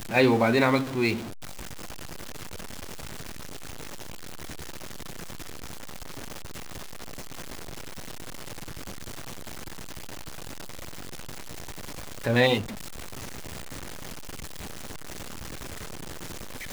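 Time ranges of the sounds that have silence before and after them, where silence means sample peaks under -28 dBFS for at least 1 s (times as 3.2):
12.26–12.61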